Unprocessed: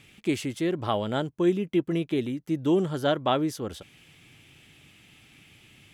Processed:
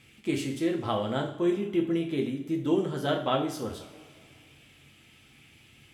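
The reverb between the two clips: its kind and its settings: two-slope reverb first 0.46 s, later 2.4 s, from -18 dB, DRR 0.5 dB; trim -4.5 dB

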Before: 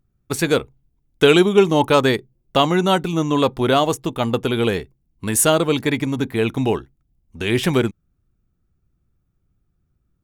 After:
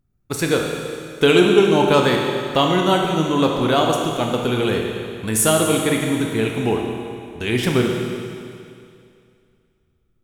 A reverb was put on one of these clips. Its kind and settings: Schroeder reverb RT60 2.4 s, combs from 25 ms, DRR 1 dB; trim -2 dB

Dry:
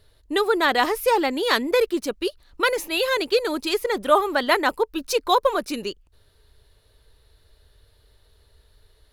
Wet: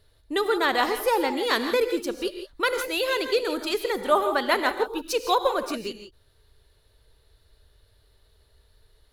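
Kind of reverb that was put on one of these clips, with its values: gated-style reverb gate 190 ms rising, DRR 7.5 dB; trim -3.5 dB

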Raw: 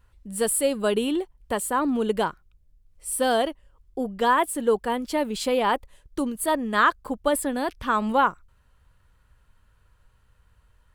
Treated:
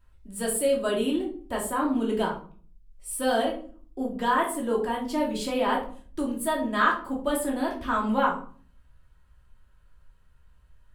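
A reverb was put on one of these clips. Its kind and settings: simulated room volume 360 m³, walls furnished, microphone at 2.8 m; trim -7.5 dB

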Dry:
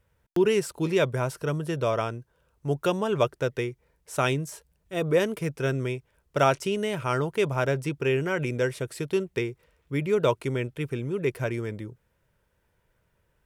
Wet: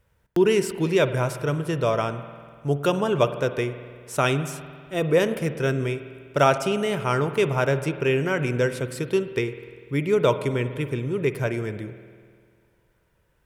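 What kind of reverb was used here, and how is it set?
spring tank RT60 2 s, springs 49 ms, chirp 60 ms, DRR 10.5 dB; trim +3 dB

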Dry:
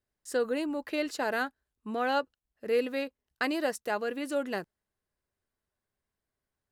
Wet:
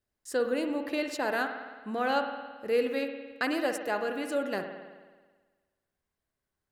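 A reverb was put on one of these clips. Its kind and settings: spring tank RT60 1.4 s, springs 54 ms, chirp 45 ms, DRR 6 dB

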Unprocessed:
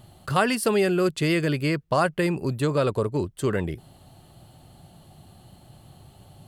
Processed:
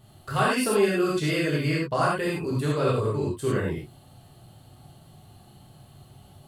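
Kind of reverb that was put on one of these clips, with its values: gated-style reverb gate 130 ms flat, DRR -6 dB; trim -7.5 dB

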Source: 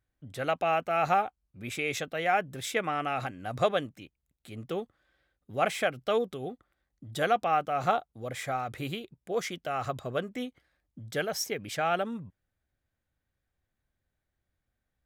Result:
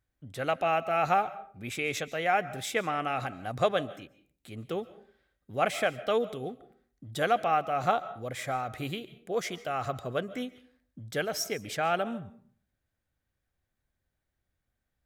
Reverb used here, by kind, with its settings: algorithmic reverb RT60 0.49 s, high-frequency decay 0.6×, pre-delay 100 ms, DRR 16.5 dB

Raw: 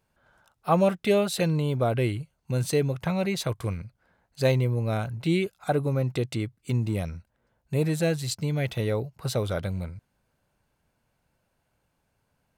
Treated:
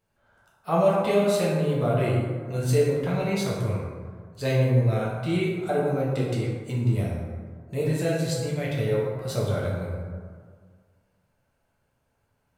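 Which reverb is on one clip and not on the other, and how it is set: plate-style reverb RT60 1.8 s, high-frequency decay 0.4×, DRR -5.5 dB; trim -5.5 dB

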